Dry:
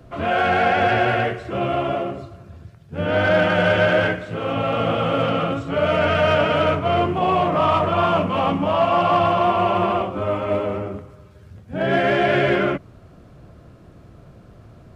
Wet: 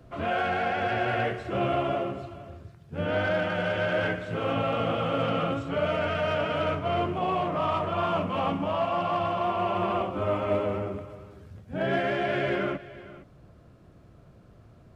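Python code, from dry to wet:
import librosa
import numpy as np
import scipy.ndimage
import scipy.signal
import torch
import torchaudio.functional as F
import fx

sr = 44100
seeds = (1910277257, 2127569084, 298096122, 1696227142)

p1 = fx.rider(x, sr, range_db=10, speed_s=0.5)
p2 = p1 + fx.echo_single(p1, sr, ms=464, db=-17.5, dry=0)
y = F.gain(torch.from_numpy(p2), -8.0).numpy()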